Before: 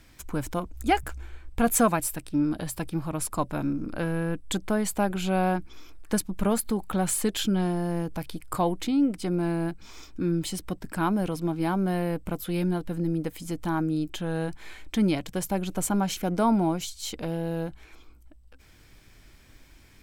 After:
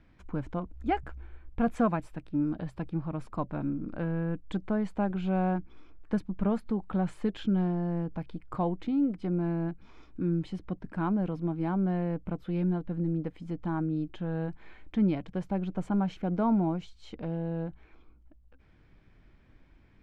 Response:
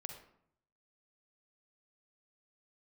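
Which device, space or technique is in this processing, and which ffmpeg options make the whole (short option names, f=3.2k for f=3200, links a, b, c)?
phone in a pocket: -af "lowpass=3.1k,equalizer=f=180:t=o:w=0.83:g=4,highshelf=f=2.2k:g=-9,volume=-5dB"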